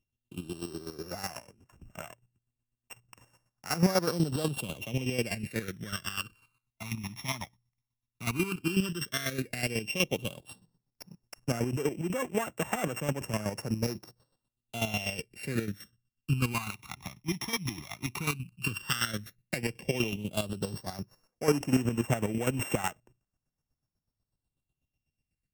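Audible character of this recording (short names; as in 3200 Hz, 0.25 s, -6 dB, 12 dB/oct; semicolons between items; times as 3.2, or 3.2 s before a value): a buzz of ramps at a fixed pitch in blocks of 16 samples; chopped level 8.1 Hz, depth 65%, duty 30%; phasing stages 12, 0.1 Hz, lowest notch 480–4400 Hz; AC-3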